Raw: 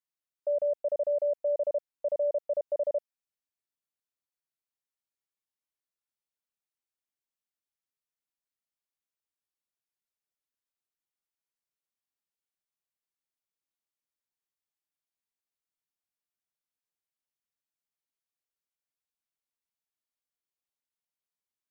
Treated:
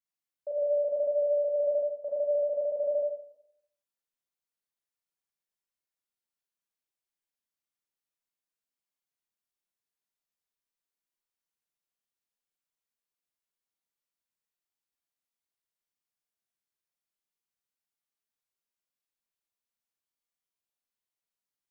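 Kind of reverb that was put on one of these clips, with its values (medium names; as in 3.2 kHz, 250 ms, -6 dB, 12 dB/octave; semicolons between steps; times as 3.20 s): Schroeder reverb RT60 0.73 s, combs from 32 ms, DRR -5 dB; trim -6.5 dB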